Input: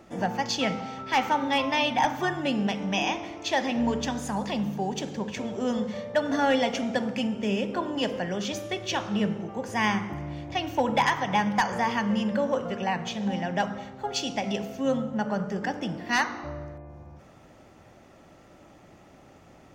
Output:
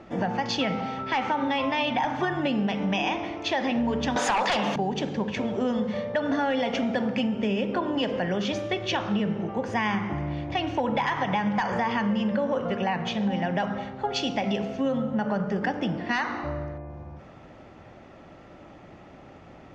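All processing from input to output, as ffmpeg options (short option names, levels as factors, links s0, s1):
-filter_complex "[0:a]asettb=1/sr,asplit=3[s0][s1][s2];[s0]atrim=end=4.164[s3];[s1]atrim=start=4.16:end=4.76,asetpts=PTS-STARTPTS,afade=t=in:d=0.004:c=qsin,afade=t=out:st=0.596:d=0.004:c=qsin,highpass=670,acontrast=43,aeval=exprs='0.15*sin(PI/2*2.82*val(0)/0.15)':c=same[s4];[s2]atrim=start=4.756[s5];[s3][s4]acrossfade=d=0.004:c1=hsin:c2=qsin[s6];[s6][s5]acrossfade=d=0.004:c1=qsin:c2=hsin,lowpass=3700,alimiter=limit=0.119:level=0:latency=1:release=30,acompressor=threshold=0.0447:ratio=6,volume=1.78"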